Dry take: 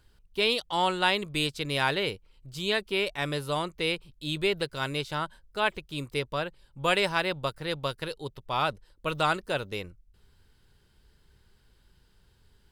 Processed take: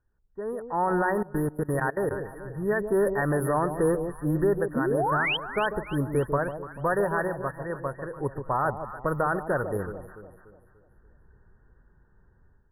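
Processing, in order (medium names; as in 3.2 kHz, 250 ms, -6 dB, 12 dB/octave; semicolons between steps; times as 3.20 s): FFT band-reject 1.9–9.6 kHz; random-step tremolo 1.1 Hz, depth 65%; 4.75–5.37 s: painted sound rise 220–3300 Hz -35 dBFS; peak limiter -25 dBFS, peak gain reduction 10.5 dB; level rider gain up to 14.5 dB; level-controlled noise filter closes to 2.3 kHz, open at -19.5 dBFS; echo whose repeats swap between lows and highs 146 ms, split 900 Hz, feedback 63%, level -8 dB; 1.12–2.11 s: level held to a coarse grid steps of 20 dB; trim -5.5 dB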